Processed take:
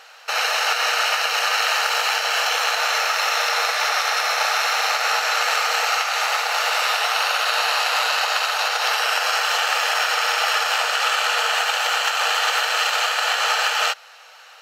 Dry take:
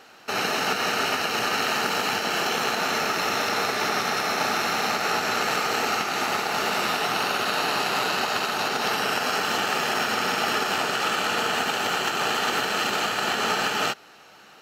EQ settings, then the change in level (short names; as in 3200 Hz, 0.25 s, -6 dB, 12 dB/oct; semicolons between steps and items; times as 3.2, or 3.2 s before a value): brick-wall FIR high-pass 450 Hz; tilt shelf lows -4.5 dB, about 790 Hz; high shelf 11000 Hz -6.5 dB; +2.5 dB